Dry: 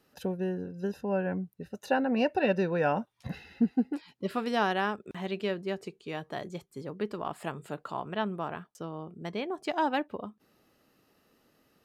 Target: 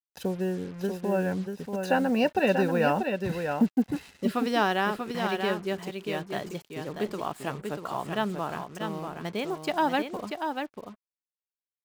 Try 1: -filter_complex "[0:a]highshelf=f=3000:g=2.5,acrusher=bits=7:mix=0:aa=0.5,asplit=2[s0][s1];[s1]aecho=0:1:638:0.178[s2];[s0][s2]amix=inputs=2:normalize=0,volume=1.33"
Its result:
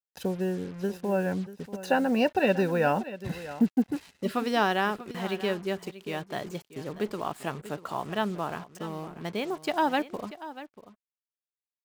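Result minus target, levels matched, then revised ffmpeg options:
echo-to-direct -9 dB
-filter_complex "[0:a]highshelf=f=3000:g=2.5,acrusher=bits=7:mix=0:aa=0.5,asplit=2[s0][s1];[s1]aecho=0:1:638:0.501[s2];[s0][s2]amix=inputs=2:normalize=0,volume=1.33"

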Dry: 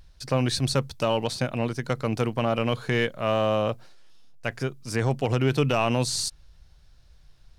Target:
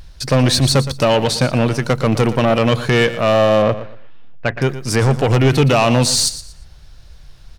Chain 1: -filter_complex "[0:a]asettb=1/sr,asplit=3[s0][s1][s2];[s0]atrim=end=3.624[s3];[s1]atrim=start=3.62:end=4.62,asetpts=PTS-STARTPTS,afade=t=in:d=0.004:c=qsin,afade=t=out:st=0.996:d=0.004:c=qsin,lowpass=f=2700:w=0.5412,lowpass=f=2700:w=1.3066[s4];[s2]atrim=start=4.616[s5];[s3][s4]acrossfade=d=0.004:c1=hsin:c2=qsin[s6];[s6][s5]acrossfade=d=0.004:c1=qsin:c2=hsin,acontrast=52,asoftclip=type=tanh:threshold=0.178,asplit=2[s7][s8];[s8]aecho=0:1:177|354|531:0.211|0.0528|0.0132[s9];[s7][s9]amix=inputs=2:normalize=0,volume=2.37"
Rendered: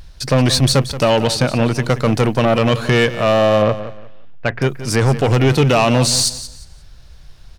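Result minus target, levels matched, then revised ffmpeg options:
echo 60 ms late
-filter_complex "[0:a]asettb=1/sr,asplit=3[s0][s1][s2];[s0]atrim=end=3.624[s3];[s1]atrim=start=3.62:end=4.62,asetpts=PTS-STARTPTS,afade=t=in:d=0.004:c=qsin,afade=t=out:st=0.996:d=0.004:c=qsin,lowpass=f=2700:w=0.5412,lowpass=f=2700:w=1.3066[s4];[s2]atrim=start=4.616[s5];[s3][s4]acrossfade=d=0.004:c1=hsin:c2=qsin[s6];[s6][s5]acrossfade=d=0.004:c1=qsin:c2=hsin,acontrast=52,asoftclip=type=tanh:threshold=0.178,asplit=2[s7][s8];[s8]aecho=0:1:117|234|351:0.211|0.0528|0.0132[s9];[s7][s9]amix=inputs=2:normalize=0,volume=2.37"

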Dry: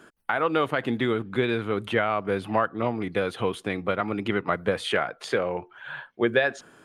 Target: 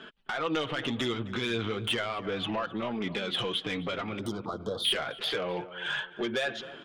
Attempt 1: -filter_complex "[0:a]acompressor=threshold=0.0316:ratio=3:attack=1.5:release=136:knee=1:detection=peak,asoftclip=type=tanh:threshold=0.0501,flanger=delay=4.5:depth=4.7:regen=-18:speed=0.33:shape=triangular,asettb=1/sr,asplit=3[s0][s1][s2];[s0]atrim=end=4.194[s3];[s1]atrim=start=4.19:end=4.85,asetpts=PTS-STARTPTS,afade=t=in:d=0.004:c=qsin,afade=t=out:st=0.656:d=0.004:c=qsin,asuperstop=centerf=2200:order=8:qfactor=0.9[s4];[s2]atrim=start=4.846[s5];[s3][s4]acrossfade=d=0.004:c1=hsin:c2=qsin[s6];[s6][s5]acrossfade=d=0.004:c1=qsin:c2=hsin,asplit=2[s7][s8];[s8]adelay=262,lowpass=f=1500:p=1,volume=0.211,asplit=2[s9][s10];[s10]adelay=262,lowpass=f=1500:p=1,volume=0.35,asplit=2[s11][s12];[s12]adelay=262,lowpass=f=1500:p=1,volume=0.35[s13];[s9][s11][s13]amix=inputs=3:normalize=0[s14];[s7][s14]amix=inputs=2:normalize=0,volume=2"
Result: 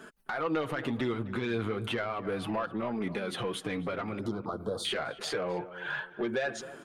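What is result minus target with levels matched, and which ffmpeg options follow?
4 kHz band -6.5 dB
-filter_complex "[0:a]acompressor=threshold=0.0316:ratio=3:attack=1.5:release=136:knee=1:detection=peak,lowpass=f=3300:t=q:w=4.7,asoftclip=type=tanh:threshold=0.0501,flanger=delay=4.5:depth=4.7:regen=-18:speed=0.33:shape=triangular,asettb=1/sr,asplit=3[s0][s1][s2];[s0]atrim=end=4.194[s3];[s1]atrim=start=4.19:end=4.85,asetpts=PTS-STARTPTS,afade=t=in:d=0.004:c=qsin,afade=t=out:st=0.656:d=0.004:c=qsin,asuperstop=centerf=2200:order=8:qfactor=0.9[s4];[s2]atrim=start=4.846[s5];[s3][s4]acrossfade=d=0.004:c1=hsin:c2=qsin[s6];[s6][s5]acrossfade=d=0.004:c1=qsin:c2=hsin,asplit=2[s7][s8];[s8]adelay=262,lowpass=f=1500:p=1,volume=0.211,asplit=2[s9][s10];[s10]adelay=262,lowpass=f=1500:p=1,volume=0.35,asplit=2[s11][s12];[s12]adelay=262,lowpass=f=1500:p=1,volume=0.35[s13];[s9][s11][s13]amix=inputs=3:normalize=0[s14];[s7][s14]amix=inputs=2:normalize=0,volume=2"

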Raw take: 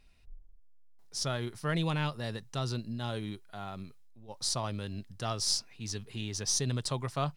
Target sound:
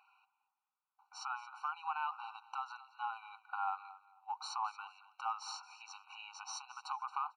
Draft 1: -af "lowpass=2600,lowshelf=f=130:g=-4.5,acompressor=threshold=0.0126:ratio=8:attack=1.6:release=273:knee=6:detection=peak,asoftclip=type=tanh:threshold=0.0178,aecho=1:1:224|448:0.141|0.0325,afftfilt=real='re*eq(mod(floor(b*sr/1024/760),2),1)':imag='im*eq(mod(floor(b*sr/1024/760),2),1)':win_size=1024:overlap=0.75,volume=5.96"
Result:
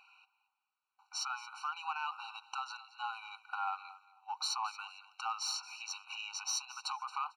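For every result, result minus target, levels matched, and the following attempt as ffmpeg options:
saturation: distortion +19 dB; 1 kHz band -3.5 dB
-af "lowpass=2600,lowshelf=f=130:g=-4.5,acompressor=threshold=0.0126:ratio=8:attack=1.6:release=273:knee=6:detection=peak,asoftclip=type=tanh:threshold=0.0562,aecho=1:1:224|448:0.141|0.0325,afftfilt=real='re*eq(mod(floor(b*sr/1024/760),2),1)':imag='im*eq(mod(floor(b*sr/1024/760),2),1)':win_size=1024:overlap=0.75,volume=5.96"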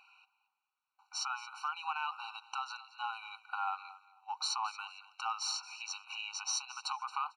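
1 kHz band -3.0 dB
-af "lowpass=1200,lowshelf=f=130:g=-4.5,acompressor=threshold=0.0126:ratio=8:attack=1.6:release=273:knee=6:detection=peak,asoftclip=type=tanh:threshold=0.0562,aecho=1:1:224|448:0.141|0.0325,afftfilt=real='re*eq(mod(floor(b*sr/1024/760),2),1)':imag='im*eq(mod(floor(b*sr/1024/760),2),1)':win_size=1024:overlap=0.75,volume=5.96"

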